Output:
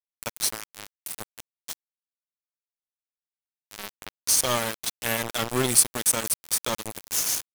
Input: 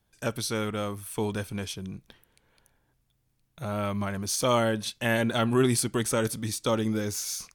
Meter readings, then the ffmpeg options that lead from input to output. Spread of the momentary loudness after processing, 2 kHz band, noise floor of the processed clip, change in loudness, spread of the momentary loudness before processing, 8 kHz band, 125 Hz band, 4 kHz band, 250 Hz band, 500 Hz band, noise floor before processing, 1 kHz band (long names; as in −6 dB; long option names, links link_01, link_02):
20 LU, 0.0 dB, below −85 dBFS, +4.0 dB, 11 LU, +9.0 dB, −8.0 dB, +4.0 dB, −8.0 dB, −5.5 dB, −72 dBFS, −1.5 dB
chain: -af "crystalizer=i=3:c=0,aeval=exprs='val(0)*gte(abs(val(0)),0.1)':channel_layout=same,volume=-1.5dB"